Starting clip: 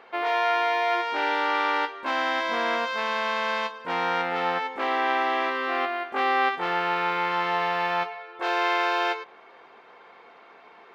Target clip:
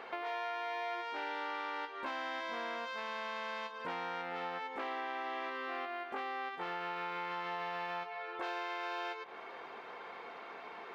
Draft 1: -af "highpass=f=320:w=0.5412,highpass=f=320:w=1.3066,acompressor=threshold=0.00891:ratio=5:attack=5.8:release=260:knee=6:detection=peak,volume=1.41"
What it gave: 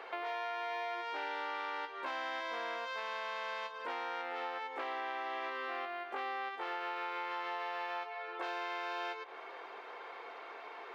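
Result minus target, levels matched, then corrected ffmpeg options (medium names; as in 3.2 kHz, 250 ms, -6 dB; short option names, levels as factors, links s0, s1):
250 Hz band -4.0 dB
-af "acompressor=threshold=0.00891:ratio=5:attack=5.8:release=260:knee=6:detection=peak,volume=1.41"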